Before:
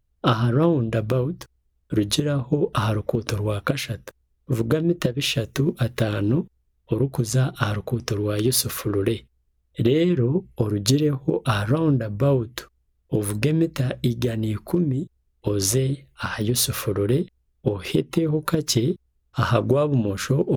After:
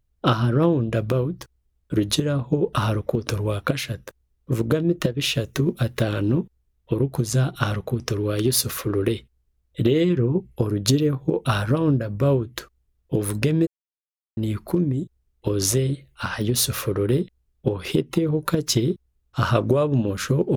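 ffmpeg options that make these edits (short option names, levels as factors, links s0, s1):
-filter_complex "[0:a]asplit=3[s0][s1][s2];[s0]atrim=end=13.67,asetpts=PTS-STARTPTS,afade=t=out:st=13.666:d=0.004:c=hsin[s3];[s1]atrim=start=13.67:end=14.37,asetpts=PTS-STARTPTS,volume=0[s4];[s2]atrim=start=14.37,asetpts=PTS-STARTPTS,afade=t=in:d=0.004:c=hsin[s5];[s3][s4][s5]concat=n=3:v=0:a=1"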